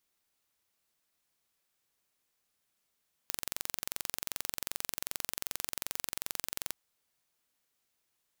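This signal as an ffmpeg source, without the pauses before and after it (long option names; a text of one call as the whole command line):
ffmpeg -f lavfi -i "aevalsrc='0.447*eq(mod(n,1951),0)':duration=3.44:sample_rate=44100" out.wav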